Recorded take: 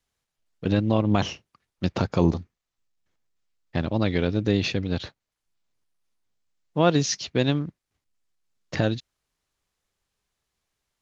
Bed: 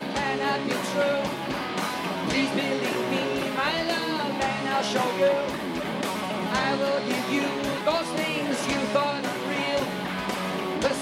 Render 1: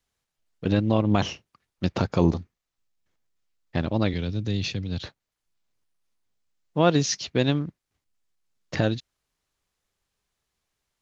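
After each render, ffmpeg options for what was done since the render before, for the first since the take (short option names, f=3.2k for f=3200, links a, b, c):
-filter_complex "[0:a]asettb=1/sr,asplit=3[a][b][c];[a]atrim=end=4.134[d];[b]atrim=start=4.13:end=5.03,asetpts=PTS-STARTPTS,afade=t=in:d=0.004:c=qsin,afade=t=out:st=0.896:d=0.004:c=qsin,acrossover=split=190|3000[e][f][g];[f]acompressor=threshold=-53dB:ratio=1.5:attack=3.2:release=140:knee=2.83:detection=peak[h];[e][h][g]amix=inputs=3:normalize=0[i];[c]atrim=start=5.026[j];[d][i]acrossfade=d=0.004:c1=hsin:c2=qsin[k];[k][j]acrossfade=d=0.004:c1=qsin:c2=hsin"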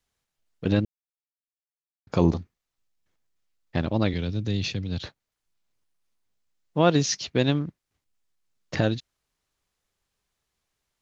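-filter_complex "[0:a]asplit=3[a][b][c];[a]atrim=end=0.85,asetpts=PTS-STARTPTS,afade=t=out:st=0.846:d=0.004:c=hsin[d];[b]atrim=start=0.85:end=2.07,asetpts=PTS-STARTPTS,volume=0[e];[c]atrim=start=2.07,asetpts=PTS-STARTPTS,afade=t=in:d=0.004:c=hsin[f];[d][e][f]concat=n=3:v=0:a=1"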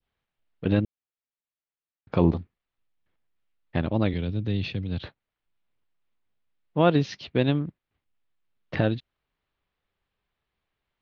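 -af "adynamicequalizer=threshold=0.00794:dfrequency=1600:dqfactor=0.73:tfrequency=1600:tqfactor=0.73:attack=5:release=100:ratio=0.375:range=2.5:mode=cutabove:tftype=bell,lowpass=f=3.5k:w=0.5412,lowpass=f=3.5k:w=1.3066"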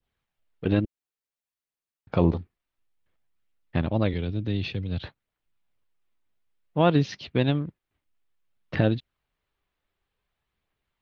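-af "aphaser=in_gain=1:out_gain=1:delay=3.4:decay=0.24:speed=0.56:type=triangular"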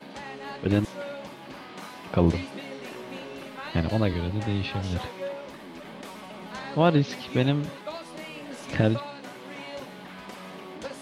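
-filter_complex "[1:a]volume=-12.5dB[a];[0:a][a]amix=inputs=2:normalize=0"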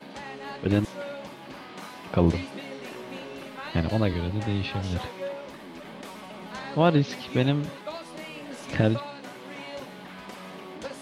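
-af anull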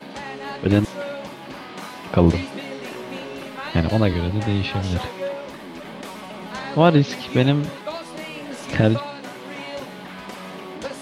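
-af "volume=6dB,alimiter=limit=-2dB:level=0:latency=1"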